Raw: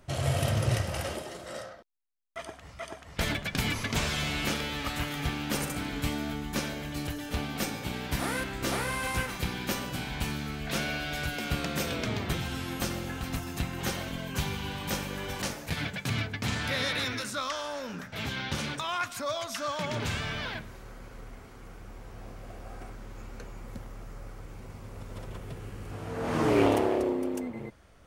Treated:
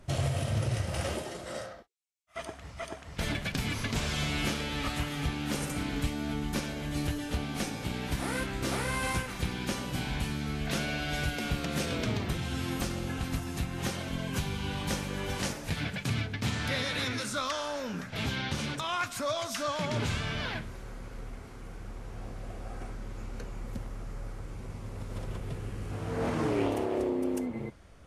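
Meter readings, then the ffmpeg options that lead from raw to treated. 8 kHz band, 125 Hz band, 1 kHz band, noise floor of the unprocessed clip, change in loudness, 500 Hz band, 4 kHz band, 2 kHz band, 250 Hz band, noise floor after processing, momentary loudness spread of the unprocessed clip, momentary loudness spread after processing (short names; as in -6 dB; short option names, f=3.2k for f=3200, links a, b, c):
-1.5 dB, +0.5 dB, -2.0 dB, -48 dBFS, -1.5 dB, -2.0 dB, -1.5 dB, -2.0 dB, 0.0 dB, -46 dBFS, 17 LU, 12 LU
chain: -af "lowshelf=f=400:g=4,alimiter=limit=-20.5dB:level=0:latency=1:release=355" -ar 32000 -c:a libvorbis -b:a 32k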